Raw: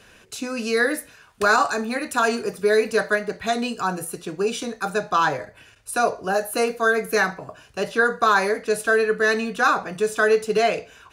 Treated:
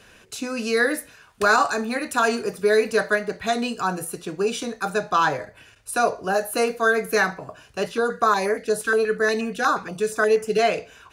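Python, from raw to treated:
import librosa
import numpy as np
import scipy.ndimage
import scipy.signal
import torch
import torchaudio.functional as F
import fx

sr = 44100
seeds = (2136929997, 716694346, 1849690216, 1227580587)

y = fx.filter_held_notch(x, sr, hz=8.4, low_hz=660.0, high_hz=3900.0, at=(7.86, 10.59))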